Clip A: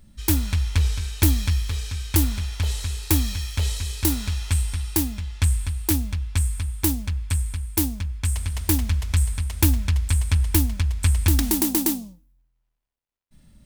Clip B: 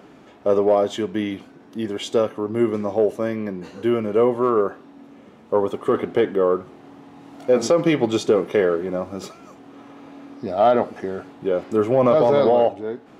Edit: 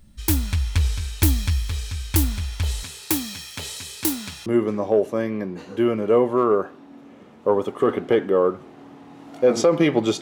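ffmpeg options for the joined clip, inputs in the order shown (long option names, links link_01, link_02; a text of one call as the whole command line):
ffmpeg -i cue0.wav -i cue1.wav -filter_complex "[0:a]asettb=1/sr,asplit=3[link_01][link_02][link_03];[link_01]atrim=end=2.834[link_04];[link_02]atrim=start=2.83:end=4.46,asetpts=PTS-STARTPTS,afade=type=in:duration=0.004:curve=qsin,afade=type=out:start_time=1.626:duration=0.004:curve=qsin,highpass=frequency=140:width=0.5412,highpass=frequency=140:width=1.3066[link_05];[link_03]atrim=start=4.456[link_06];[link_04][link_05]acrossfade=duration=0.004:curve1=hsin:curve2=qsin[link_07];[link_07][link_06]acrossfade=duration=0.004:curve1=qsin:curve2=hsin,apad=whole_dur=10.21,atrim=end=10.21,atrim=end=4.462[link_08];[1:a]atrim=start=2.518:end=8.27[link_09];[link_08][link_09]acrossfade=duration=0.004:curve1=hsin:curve2=hsin" out.wav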